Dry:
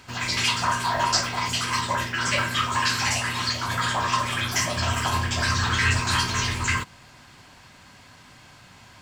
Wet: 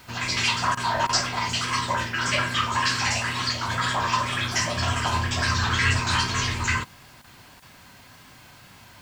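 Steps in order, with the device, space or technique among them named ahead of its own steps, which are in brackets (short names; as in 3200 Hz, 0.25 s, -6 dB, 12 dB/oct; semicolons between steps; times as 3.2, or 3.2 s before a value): worn cassette (LPF 8000 Hz 12 dB/oct; wow and flutter; level dips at 0.75/1.07/7.22/7.6, 20 ms -14 dB; white noise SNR 32 dB)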